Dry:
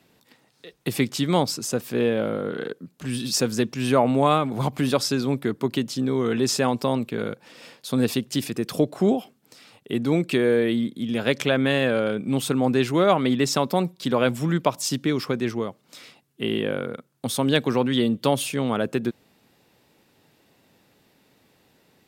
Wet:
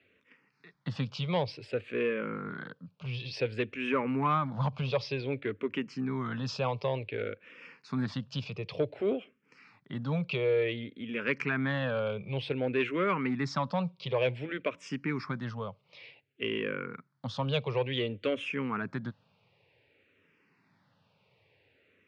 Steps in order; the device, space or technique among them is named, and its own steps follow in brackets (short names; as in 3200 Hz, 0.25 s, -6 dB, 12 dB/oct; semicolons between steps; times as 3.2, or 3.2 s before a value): barber-pole phaser into a guitar amplifier (endless phaser -0.55 Hz; soft clip -13 dBFS, distortion -23 dB; speaker cabinet 97–4000 Hz, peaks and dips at 99 Hz +6 dB, 230 Hz -7 dB, 330 Hz -8 dB, 740 Hz -7 dB, 2400 Hz +6 dB, 3700 Hz -6 dB); gain -2.5 dB